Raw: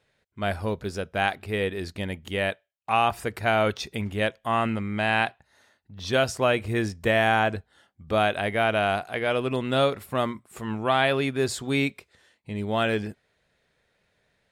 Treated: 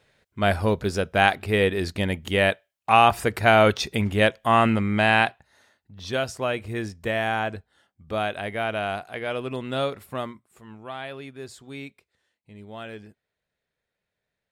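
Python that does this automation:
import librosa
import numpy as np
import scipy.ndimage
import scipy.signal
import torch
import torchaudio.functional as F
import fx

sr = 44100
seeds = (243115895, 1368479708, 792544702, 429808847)

y = fx.gain(x, sr, db=fx.line((4.93, 6.0), (6.24, -4.0), (10.15, -4.0), (10.6, -13.5)))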